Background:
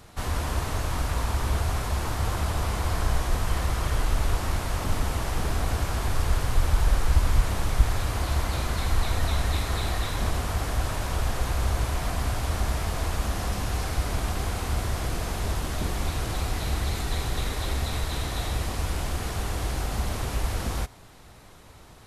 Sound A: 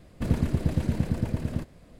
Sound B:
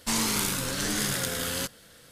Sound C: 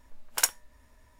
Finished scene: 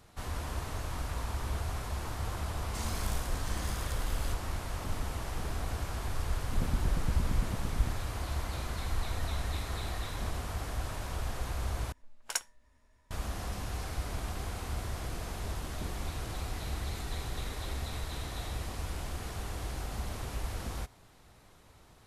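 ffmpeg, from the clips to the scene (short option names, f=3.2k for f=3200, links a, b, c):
-filter_complex "[0:a]volume=-9dB[a];[3:a]lowpass=9.8k[b];[a]asplit=2[c][d];[c]atrim=end=11.924[e];[b]atrim=end=1.19,asetpts=PTS-STARTPTS,volume=-7.5dB[f];[d]atrim=start=13.106[g];[2:a]atrim=end=2.11,asetpts=PTS-STARTPTS,volume=-15.5dB,afade=t=in:d=0.004:c=hsin,afade=t=out:st=2.106:d=0.004:c=hsin,adelay=2670[h];[1:a]atrim=end=1.99,asetpts=PTS-STARTPTS,volume=-11dB,afade=t=in:d=0.004:c=hsin,afade=t=out:st=1.986:d=0.004:c=hsin,adelay=6310[i];[e][f]acrossfade=d=0.004:c1=hsin:c2=hsin[j];[j][g]acrossfade=d=0.004:c1=hsin:c2=hsin[k];[k][h][i]amix=inputs=3:normalize=0"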